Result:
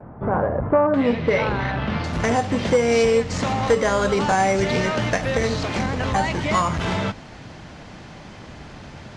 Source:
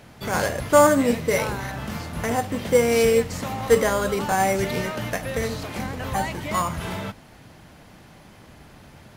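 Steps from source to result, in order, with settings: compression 3:1, threshold -24 dBFS, peak gain reduction 11 dB; low-pass 1.2 kHz 24 dB/octave, from 0.94 s 3.8 kHz, from 2.04 s 7 kHz; gate with hold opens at -45 dBFS; transformer saturation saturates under 360 Hz; trim +8 dB

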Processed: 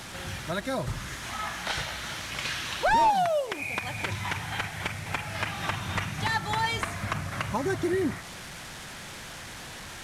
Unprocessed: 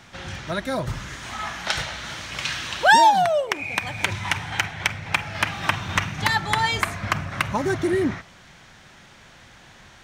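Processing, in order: one-bit delta coder 64 kbps, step -33.5 dBFS; in parallel at -2 dB: compression, threshold -29 dBFS, peak gain reduction 15.5 dB; on the sum: trim -7 dB

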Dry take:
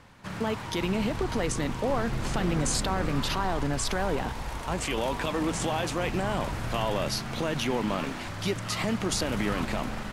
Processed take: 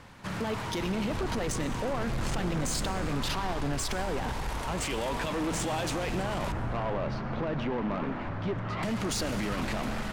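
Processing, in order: 6.52–8.83 s: low-pass 1.5 kHz 12 dB/octave; peak limiter -20.5 dBFS, peak gain reduction 5.5 dB; saturation -29 dBFS, distortion -12 dB; reverberation RT60 1.9 s, pre-delay 65 ms, DRR 13 dB; trim +3 dB

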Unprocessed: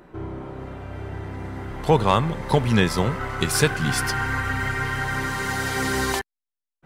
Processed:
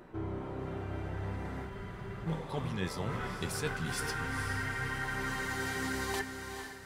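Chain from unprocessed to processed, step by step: reverse; compression 6:1, threshold -29 dBFS, peak gain reduction 16 dB; reverse; flange 0.62 Hz, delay 8.1 ms, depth 5 ms, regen +66%; echo that smears into a reverb 460 ms, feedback 41%, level -7 dB; spectral freeze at 1.71 s, 0.55 s

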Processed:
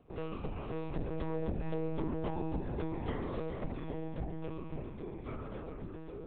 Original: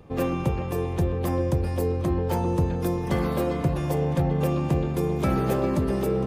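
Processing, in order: Doppler pass-by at 2.00 s, 10 m/s, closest 2.9 m; compression 12:1, threshold -34 dBFS, peak gain reduction 14.5 dB; monotone LPC vocoder at 8 kHz 160 Hz; trim +2.5 dB

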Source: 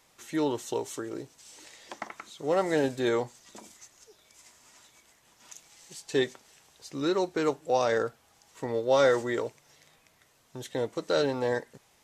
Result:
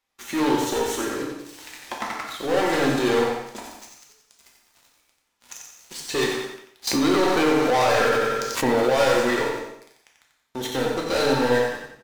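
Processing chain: graphic EQ 125/500/8000 Hz -11/-5/-7 dB; waveshaping leveller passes 5; feedback delay 90 ms, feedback 34%, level -6 dB; gated-style reverb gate 300 ms falling, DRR -1 dB; 6.87–8.90 s: level flattener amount 70%; trim -6 dB

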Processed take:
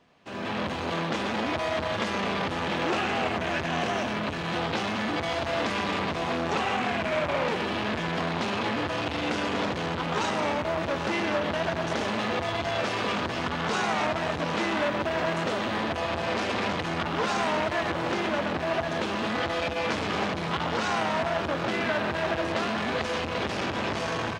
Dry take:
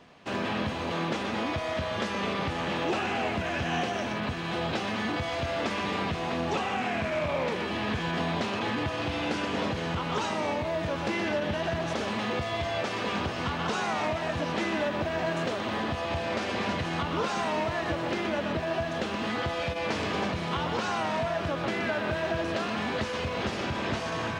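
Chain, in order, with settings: level rider gain up to 14 dB; delay 798 ms -14 dB; transformer saturation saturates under 1.3 kHz; trim -8.5 dB

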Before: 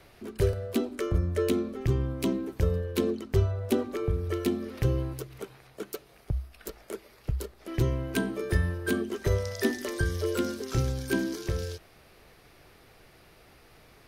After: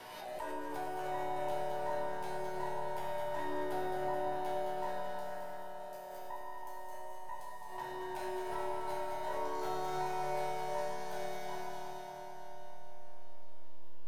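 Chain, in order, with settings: every band turned upside down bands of 1 kHz; valve stage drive 17 dB, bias 0.65; in parallel at -7 dB: hysteresis with a dead band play -37 dBFS; on the sum: chord resonator B2 minor, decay 0.68 s; on a send: echo whose repeats swap between lows and highs 108 ms, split 1.2 kHz, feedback 82%, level -3 dB; on the sum: Schroeder reverb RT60 3.2 s, combs from 27 ms, DRR -1 dB; swell ahead of each attack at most 28 dB/s; trim +2 dB

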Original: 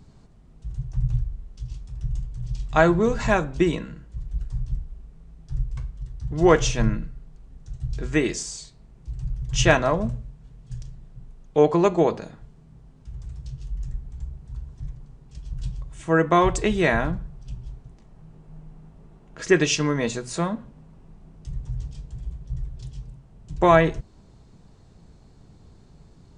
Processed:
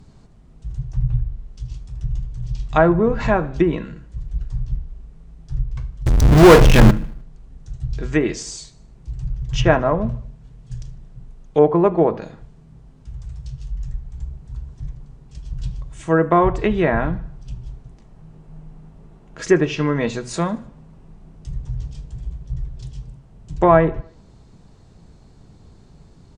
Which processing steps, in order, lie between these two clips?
low-pass that closes with the level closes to 1.4 kHz, closed at -15.5 dBFS; 6.06–6.91 s: power-law waveshaper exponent 0.35; 13.13–14.15 s: peaking EQ 300 Hz -8.5 dB 0.73 oct; on a send: feedback delay 76 ms, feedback 53%, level -23 dB; on the sum: trim +3.5 dB

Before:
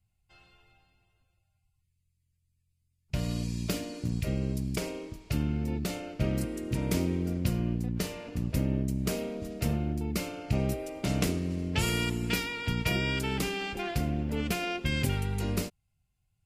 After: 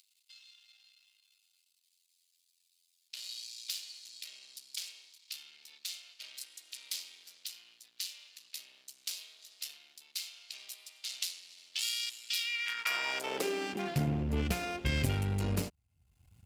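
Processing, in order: partial rectifier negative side -12 dB; upward compressor, threshold -46 dBFS; high-pass sweep 3.9 kHz -> 63 Hz, 12.32–14.41 s

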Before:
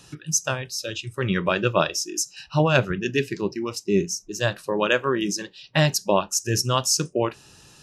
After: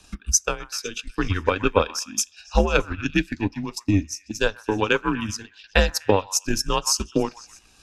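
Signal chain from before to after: frequency shift -97 Hz; repeats whose band climbs or falls 124 ms, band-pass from 1.2 kHz, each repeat 0.7 oct, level -7.5 dB; transient shaper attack +8 dB, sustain -6 dB; trim -3 dB

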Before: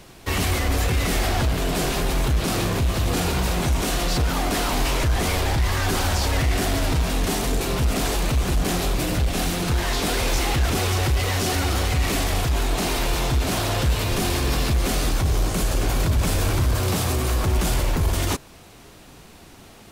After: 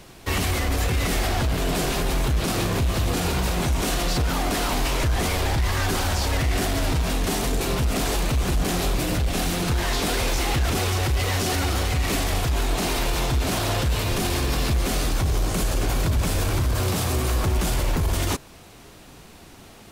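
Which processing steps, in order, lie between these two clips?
peak limiter -14.5 dBFS, peak gain reduction 3.5 dB

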